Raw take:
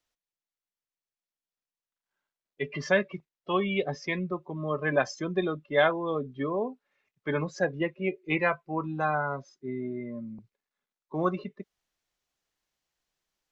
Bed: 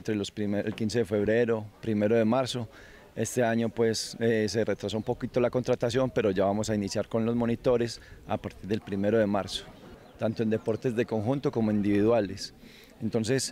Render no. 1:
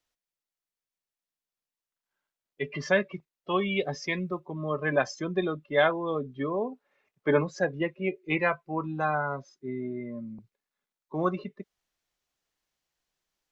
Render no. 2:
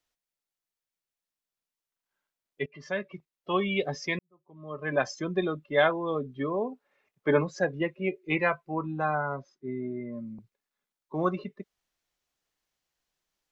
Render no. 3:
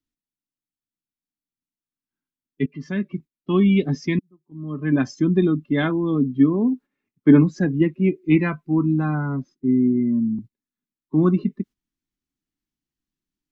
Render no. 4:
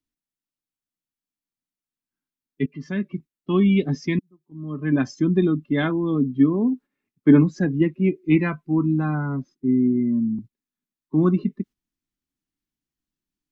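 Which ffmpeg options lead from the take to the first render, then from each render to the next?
ffmpeg -i in.wav -filter_complex "[0:a]asettb=1/sr,asplit=3[link_01][link_02][link_03];[link_01]atrim=end=3.584[link_04];[link_02]atrim=start=3.58:end=4.4,asetpts=PTS-STARTPTS,afade=type=in:duration=0.004:curve=qsin,afade=type=out:start_time=0.816:duration=0.004:curve=qsin,aemphasis=mode=production:type=cd[link_05];[link_03]atrim=start=4.396[link_06];[link_04][link_05]acrossfade=duration=0.004:curve1=hsin:curve2=qsin[link_07];[link_07][link_06]acrossfade=duration=0.004:curve1=qsin:curve2=hsin,asplit=3[link_08][link_09][link_10];[link_08]afade=type=out:start_time=6.71:duration=0.02[link_11];[link_09]equalizer=frequency=560:width=0.48:gain=8,afade=type=in:start_time=6.71:duration=0.02,afade=type=out:start_time=7.41:duration=0.02[link_12];[link_10]afade=type=in:start_time=7.41:duration=0.02[link_13];[link_11][link_12][link_13]amix=inputs=3:normalize=0" out.wav
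ffmpeg -i in.wav -filter_complex "[0:a]asettb=1/sr,asplit=3[link_01][link_02][link_03];[link_01]atrim=end=8.744[link_04];[link_02]atrim=start=8.74:end=10.13,asetpts=PTS-STARTPTS,afade=type=in:duration=0.004:curve=qsin,afade=type=out:start_time=1.386:duration=0.004:curve=qsin,lowpass=frequency=2400:poles=1[link_05];[link_03]atrim=start=10.126[link_06];[link_04][link_05]acrossfade=duration=0.004:curve1=hsin:curve2=qsin[link_07];[link_07][link_06]acrossfade=duration=0.004:curve1=qsin:curve2=hsin,asplit=3[link_08][link_09][link_10];[link_08]atrim=end=2.66,asetpts=PTS-STARTPTS,afade=type=out:start_time=2.656:duration=0.004:curve=hsin:silence=0.112202[link_11];[link_09]atrim=start=2.66:end=4.19,asetpts=PTS-STARTPTS,afade=type=in:duration=0.89:silence=0.112202,afade=type=out:start_time=1.526:duration=0.004:curve=hsin[link_12];[link_10]atrim=start=4.19,asetpts=PTS-STARTPTS,afade=type=in:duration=0.86:curve=qua[link_13];[link_11][link_12][link_13]concat=n=3:v=0:a=1" out.wav
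ffmpeg -i in.wav -af "agate=range=-10dB:threshold=-52dB:ratio=16:detection=peak,lowshelf=frequency=390:width_type=q:width=3:gain=12" out.wav
ffmpeg -i in.wav -af "volume=-1dB" out.wav

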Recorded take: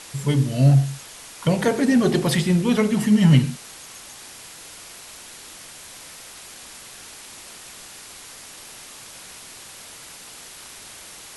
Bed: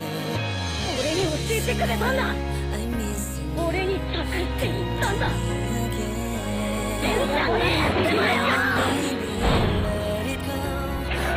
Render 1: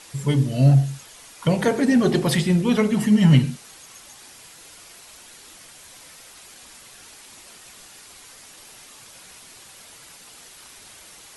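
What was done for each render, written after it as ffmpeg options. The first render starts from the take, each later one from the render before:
ffmpeg -i in.wav -af "afftdn=noise_reduction=6:noise_floor=-42" out.wav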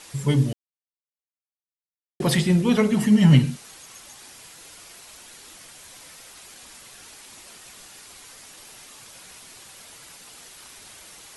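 ffmpeg -i in.wav -filter_complex "[0:a]asplit=3[link_01][link_02][link_03];[link_01]atrim=end=0.53,asetpts=PTS-STARTPTS,afade=type=out:start_time=0.526:duration=0.004:curve=hsin[link_04];[link_02]atrim=start=0.53:end=2.2,asetpts=PTS-STARTPTS,volume=0[link_05];[link_03]atrim=start=2.2,asetpts=PTS-STARTPTS,afade=type=in:duration=0.004:curve=hsin[link_06];[link_04][link_05][link_06]concat=n=3:v=0:a=1" out.wav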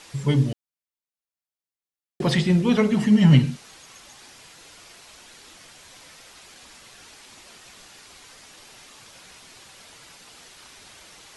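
ffmpeg -i in.wav -filter_complex "[0:a]acrossover=split=7000[link_01][link_02];[link_02]acompressor=threshold=-58dB:ratio=4:attack=1:release=60[link_03];[link_01][link_03]amix=inputs=2:normalize=0" out.wav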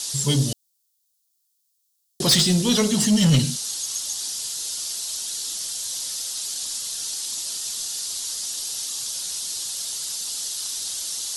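ffmpeg -i in.wav -af "aexciter=amount=12.3:drive=2.6:freq=3400,asoftclip=type=tanh:threshold=-11.5dB" out.wav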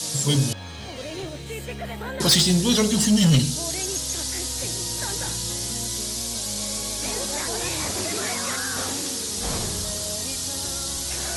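ffmpeg -i in.wav -i bed.wav -filter_complex "[1:a]volume=-9.5dB[link_01];[0:a][link_01]amix=inputs=2:normalize=0" out.wav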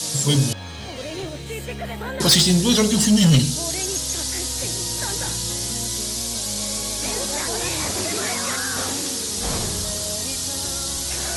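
ffmpeg -i in.wav -af "volume=2.5dB" out.wav

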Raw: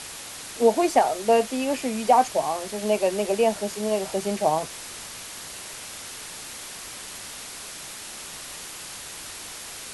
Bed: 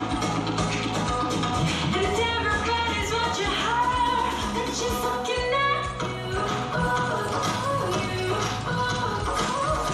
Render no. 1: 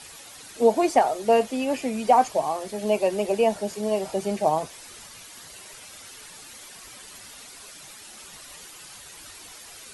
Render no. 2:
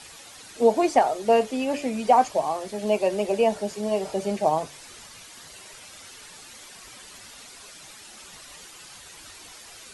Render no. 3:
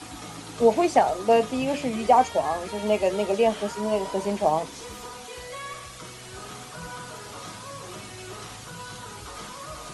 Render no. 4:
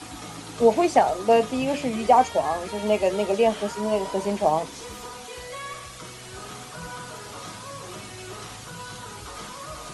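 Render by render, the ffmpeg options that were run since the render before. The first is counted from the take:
ffmpeg -i in.wav -af "afftdn=noise_reduction=10:noise_floor=-39" out.wav
ffmpeg -i in.wav -filter_complex "[0:a]acrossover=split=9600[link_01][link_02];[link_02]acompressor=threshold=-58dB:ratio=4:attack=1:release=60[link_03];[link_01][link_03]amix=inputs=2:normalize=0,bandreject=frequency=144.6:width_type=h:width=4,bandreject=frequency=289.2:width_type=h:width=4,bandreject=frequency=433.8:width_type=h:width=4,bandreject=frequency=578.4:width_type=h:width=4" out.wav
ffmpeg -i in.wav -i bed.wav -filter_complex "[1:a]volume=-14.5dB[link_01];[0:a][link_01]amix=inputs=2:normalize=0" out.wav
ffmpeg -i in.wav -af "volume=1dB" out.wav

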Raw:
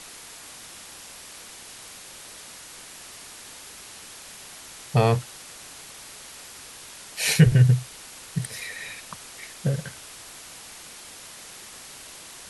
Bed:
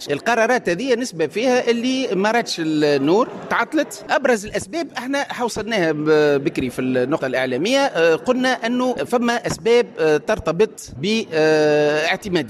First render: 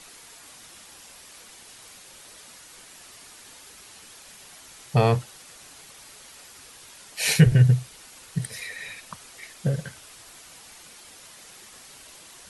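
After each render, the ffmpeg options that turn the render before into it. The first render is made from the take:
ffmpeg -i in.wav -af "afftdn=noise_reduction=6:noise_floor=-44" out.wav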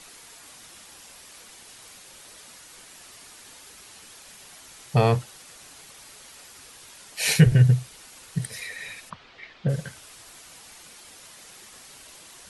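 ffmpeg -i in.wav -filter_complex "[0:a]asplit=3[link_01][link_02][link_03];[link_01]afade=type=out:start_time=9.09:duration=0.02[link_04];[link_02]lowpass=frequency=3900:width=0.5412,lowpass=frequency=3900:width=1.3066,afade=type=in:start_time=9.09:duration=0.02,afade=type=out:start_time=9.68:duration=0.02[link_05];[link_03]afade=type=in:start_time=9.68:duration=0.02[link_06];[link_04][link_05][link_06]amix=inputs=3:normalize=0" out.wav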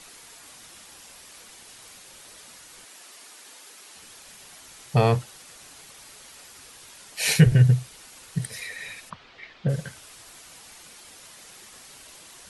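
ffmpeg -i in.wav -filter_complex "[0:a]asettb=1/sr,asplit=3[link_01][link_02][link_03];[link_01]atrim=end=2.854[link_04];[link_02]atrim=start=2.85:end=3.95,asetpts=PTS-STARTPTS,afade=type=in:duration=0.004:curve=qsin,afade=type=out:start_time=1.096:duration=0.004:curve=qsin,highpass=280[link_05];[link_03]atrim=start=3.946[link_06];[link_04][link_05]acrossfade=duration=0.004:curve1=hsin:curve2=qsin[link_07];[link_07][link_06]acrossfade=duration=0.004:curve1=qsin:curve2=hsin" out.wav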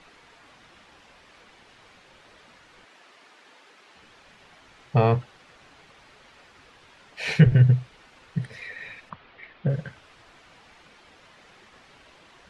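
ffmpeg -i in.wav -af "lowpass=2600" out.wav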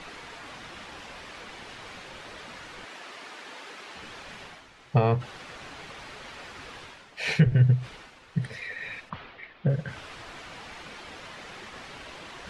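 ffmpeg -i in.wav -af "alimiter=limit=-10.5dB:level=0:latency=1:release=468,areverse,acompressor=mode=upward:threshold=-32dB:ratio=2.5,areverse" out.wav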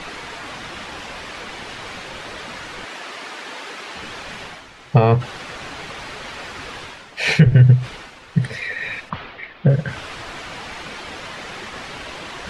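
ffmpeg -i in.wav -af "volume=10dB,alimiter=limit=-3dB:level=0:latency=1" out.wav

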